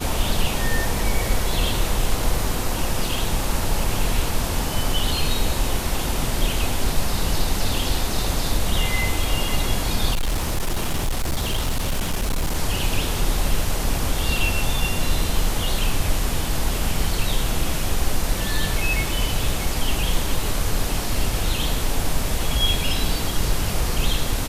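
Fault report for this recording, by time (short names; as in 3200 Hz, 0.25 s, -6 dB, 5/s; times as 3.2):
10.13–12.57 clipped -18 dBFS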